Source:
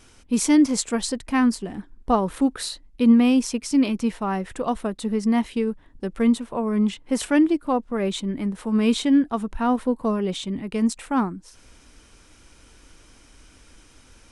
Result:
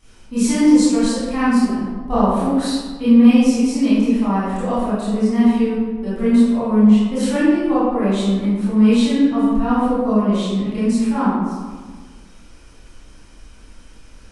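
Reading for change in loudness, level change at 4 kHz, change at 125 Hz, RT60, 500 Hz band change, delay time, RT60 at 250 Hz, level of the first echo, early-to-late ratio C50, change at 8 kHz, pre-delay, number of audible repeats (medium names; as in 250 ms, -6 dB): +6.0 dB, +2.5 dB, no reading, 1.5 s, +5.0 dB, no echo, 1.7 s, no echo, -4.0 dB, +0.5 dB, 23 ms, no echo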